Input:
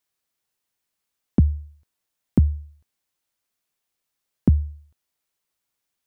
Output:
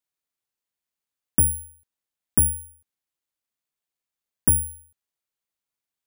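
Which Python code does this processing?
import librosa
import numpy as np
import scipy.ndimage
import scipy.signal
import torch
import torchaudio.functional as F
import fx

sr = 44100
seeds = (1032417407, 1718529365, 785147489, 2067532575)

y = fx.cheby_harmonics(x, sr, harmonics=(6,), levels_db=(-15,), full_scale_db=-7.0)
y = (np.kron(scipy.signal.resample_poly(y, 1, 4), np.eye(4)[0]) * 4)[:len(y)]
y = y * 10.0 ** (-8.5 / 20.0)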